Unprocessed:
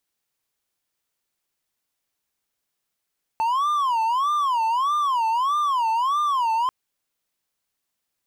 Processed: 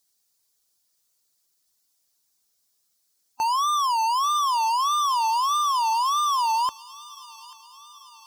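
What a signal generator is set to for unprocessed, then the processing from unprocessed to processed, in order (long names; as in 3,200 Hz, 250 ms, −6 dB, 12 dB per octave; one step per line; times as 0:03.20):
siren wail 889–1,200 Hz 1.6 per second triangle −17 dBFS 3.29 s
spectral magnitudes quantised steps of 15 dB
high shelf with overshoot 3,600 Hz +9.5 dB, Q 1.5
delay with a high-pass on its return 839 ms, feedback 58%, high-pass 1,700 Hz, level −15 dB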